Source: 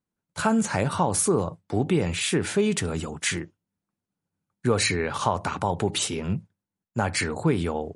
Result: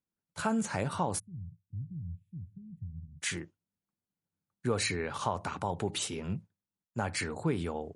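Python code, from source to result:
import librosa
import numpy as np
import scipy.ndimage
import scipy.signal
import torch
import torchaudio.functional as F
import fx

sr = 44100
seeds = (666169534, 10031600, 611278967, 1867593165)

y = fx.cheby2_bandstop(x, sr, low_hz=460.0, high_hz=9900.0, order=4, stop_db=60, at=(1.18, 3.21), fade=0.02)
y = y * 10.0 ** (-8.0 / 20.0)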